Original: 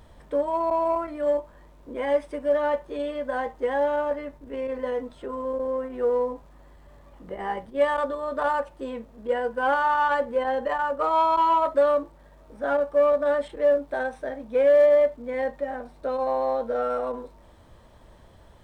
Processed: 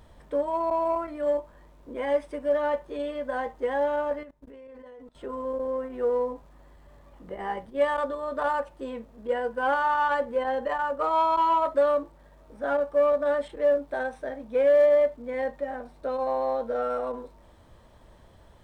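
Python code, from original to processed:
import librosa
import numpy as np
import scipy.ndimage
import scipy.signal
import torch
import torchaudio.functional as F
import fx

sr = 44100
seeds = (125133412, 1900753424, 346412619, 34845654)

y = fx.level_steps(x, sr, step_db=22, at=(4.23, 5.15))
y = y * librosa.db_to_amplitude(-2.0)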